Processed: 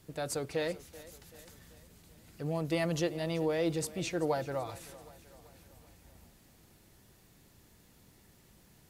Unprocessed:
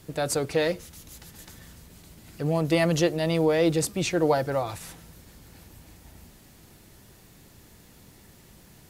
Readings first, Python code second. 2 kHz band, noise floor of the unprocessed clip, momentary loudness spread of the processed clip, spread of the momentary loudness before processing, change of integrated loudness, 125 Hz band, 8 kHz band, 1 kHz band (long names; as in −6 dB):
−9.0 dB, −54 dBFS, 20 LU, 21 LU, −9.0 dB, −9.0 dB, −9.0 dB, −9.0 dB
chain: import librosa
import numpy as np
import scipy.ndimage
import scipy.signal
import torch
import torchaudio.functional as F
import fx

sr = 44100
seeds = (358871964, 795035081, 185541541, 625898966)

y = fx.echo_thinned(x, sr, ms=384, feedback_pct=54, hz=190.0, wet_db=-18)
y = y * 10.0 ** (-9.0 / 20.0)